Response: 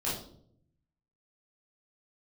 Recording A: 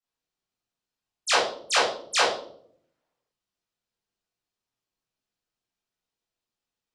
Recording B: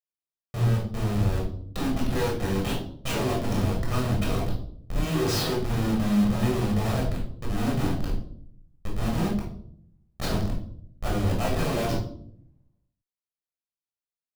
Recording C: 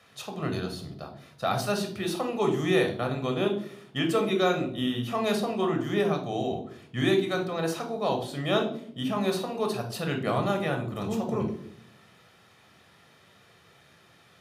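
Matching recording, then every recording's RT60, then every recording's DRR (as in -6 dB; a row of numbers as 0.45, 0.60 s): A; 0.65, 0.65, 0.65 s; -8.5, -3.0, 3.5 dB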